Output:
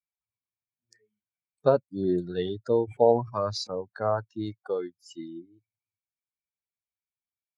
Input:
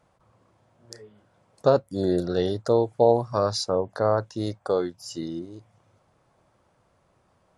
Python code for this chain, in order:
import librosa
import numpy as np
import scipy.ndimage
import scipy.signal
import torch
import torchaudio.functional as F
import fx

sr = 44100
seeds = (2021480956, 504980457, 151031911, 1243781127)

y = fx.bin_expand(x, sr, power=2.0)
y = fx.bandpass_edges(y, sr, low_hz=110.0, high_hz=5100.0)
y = fx.sustainer(y, sr, db_per_s=130.0, at=(2.87, 3.7), fade=0.02)